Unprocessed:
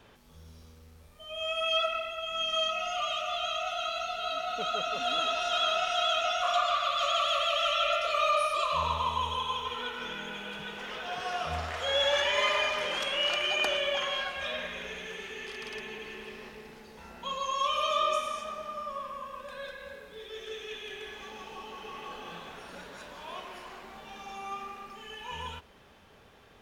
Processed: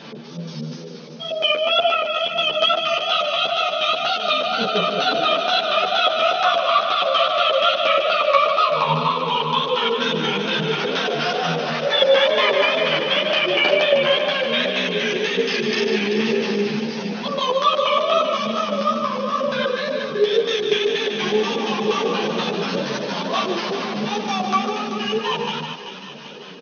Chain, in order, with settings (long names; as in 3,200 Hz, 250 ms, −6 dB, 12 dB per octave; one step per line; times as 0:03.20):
treble cut that deepens with the level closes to 2,900 Hz, closed at −27 dBFS
bass and treble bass +10 dB, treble +1 dB
double-tracking delay 37 ms −4.5 dB
in parallel at +0.5 dB: speech leveller
on the sum: auto-filter low-pass square 4.2 Hz 500–5,000 Hz
tape wow and flutter 97 cents
on a send: single-tap delay 150 ms −7.5 dB
on the sum: brick-wall band-pass 130–6,500 Hz
feedback echo with a high-pass in the loop 386 ms, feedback 66%, high-pass 1,100 Hz, level −8.5 dB
string-ensemble chorus
level +7 dB